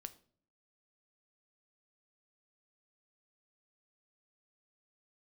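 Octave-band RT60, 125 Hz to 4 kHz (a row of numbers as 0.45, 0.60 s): 0.75, 0.75, 0.60, 0.45, 0.40, 0.35 s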